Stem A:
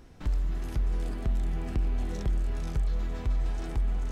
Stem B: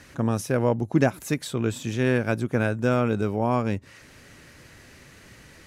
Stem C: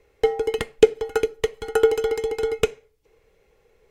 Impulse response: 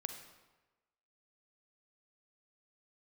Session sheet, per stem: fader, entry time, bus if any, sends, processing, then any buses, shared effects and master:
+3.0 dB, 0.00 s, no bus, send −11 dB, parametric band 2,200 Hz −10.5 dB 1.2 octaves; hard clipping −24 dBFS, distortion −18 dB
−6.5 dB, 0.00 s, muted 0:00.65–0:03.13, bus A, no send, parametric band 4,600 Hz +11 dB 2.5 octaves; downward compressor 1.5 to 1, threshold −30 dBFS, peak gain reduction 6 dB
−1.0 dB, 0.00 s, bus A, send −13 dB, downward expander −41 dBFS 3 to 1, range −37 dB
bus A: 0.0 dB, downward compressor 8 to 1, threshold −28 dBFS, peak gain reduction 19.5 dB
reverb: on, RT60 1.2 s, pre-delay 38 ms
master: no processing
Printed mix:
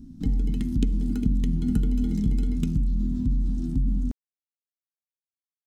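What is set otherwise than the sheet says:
stem B: muted
master: extra drawn EQ curve 100 Hz 0 dB, 260 Hz +14 dB, 460 Hz −25 dB, 2,100 Hz −15 dB, 3,900 Hz −8 dB

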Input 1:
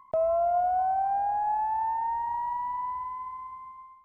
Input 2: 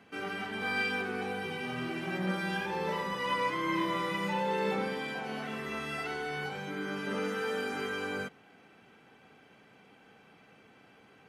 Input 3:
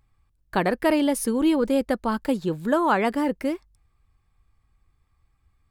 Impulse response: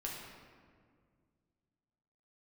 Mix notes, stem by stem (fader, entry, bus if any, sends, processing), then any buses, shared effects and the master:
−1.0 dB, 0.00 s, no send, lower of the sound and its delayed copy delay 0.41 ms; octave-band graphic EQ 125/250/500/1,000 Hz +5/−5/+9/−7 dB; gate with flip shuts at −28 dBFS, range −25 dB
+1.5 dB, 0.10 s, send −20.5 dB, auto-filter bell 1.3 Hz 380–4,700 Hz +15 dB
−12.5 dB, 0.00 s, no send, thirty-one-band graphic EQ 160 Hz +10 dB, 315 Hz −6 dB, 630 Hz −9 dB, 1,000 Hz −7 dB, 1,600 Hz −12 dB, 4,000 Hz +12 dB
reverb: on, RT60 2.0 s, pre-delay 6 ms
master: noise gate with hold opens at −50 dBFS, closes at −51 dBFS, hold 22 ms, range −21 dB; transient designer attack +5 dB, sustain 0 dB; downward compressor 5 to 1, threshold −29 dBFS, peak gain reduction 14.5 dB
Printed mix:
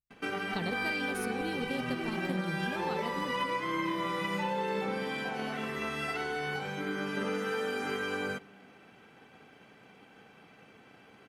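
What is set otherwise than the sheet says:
stem 1: muted
stem 2: missing auto-filter bell 1.3 Hz 380–4,700 Hz +15 dB

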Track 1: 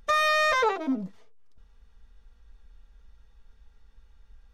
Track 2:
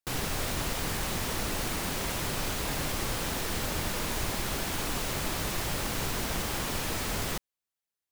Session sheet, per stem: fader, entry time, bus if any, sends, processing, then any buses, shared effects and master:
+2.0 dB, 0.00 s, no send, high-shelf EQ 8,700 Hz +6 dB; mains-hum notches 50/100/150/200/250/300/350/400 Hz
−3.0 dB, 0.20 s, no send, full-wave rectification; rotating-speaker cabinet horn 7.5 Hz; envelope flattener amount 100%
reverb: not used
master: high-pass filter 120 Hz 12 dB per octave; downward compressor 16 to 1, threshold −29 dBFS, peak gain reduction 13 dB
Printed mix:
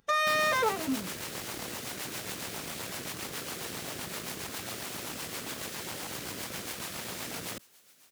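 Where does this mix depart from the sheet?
stem 1 +2.0 dB → −4.0 dB
master: missing downward compressor 16 to 1, threshold −29 dBFS, peak gain reduction 13 dB

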